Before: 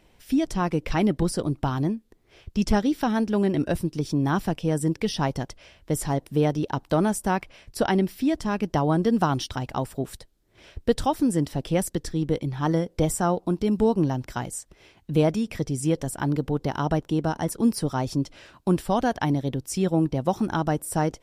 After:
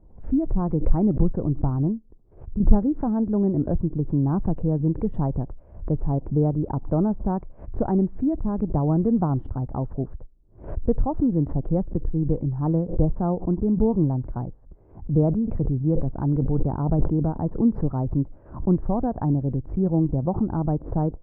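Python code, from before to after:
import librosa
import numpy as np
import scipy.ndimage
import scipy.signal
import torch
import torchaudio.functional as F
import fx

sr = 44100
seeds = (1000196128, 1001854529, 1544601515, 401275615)

y = fx.sustainer(x, sr, db_per_s=71.0, at=(15.28, 17.25))
y = fx.edit(y, sr, fx.fade_out_to(start_s=1.91, length_s=0.69, floor_db=-9.0), tone=tone)
y = scipy.signal.sosfilt(scipy.signal.butter(4, 1100.0, 'lowpass', fs=sr, output='sos'), y)
y = fx.tilt_eq(y, sr, slope=-3.5)
y = fx.pre_swell(y, sr, db_per_s=130.0)
y = y * 10.0 ** (-6.0 / 20.0)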